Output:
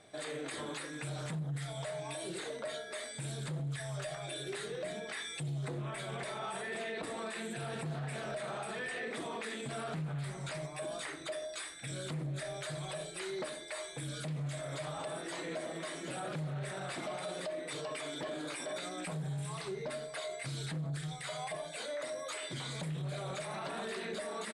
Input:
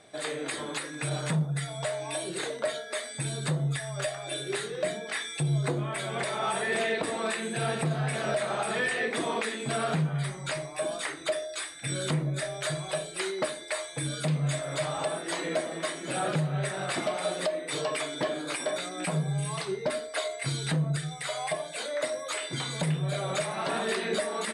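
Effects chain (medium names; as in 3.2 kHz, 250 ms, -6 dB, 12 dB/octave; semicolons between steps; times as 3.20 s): bass shelf 110 Hz +5.5 dB; on a send: delay 605 ms -21.5 dB; on the sum: peak limiter -27.5 dBFS, peak gain reduction 9.5 dB; loudspeaker Doppler distortion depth 0.17 ms; trim -4.5 dB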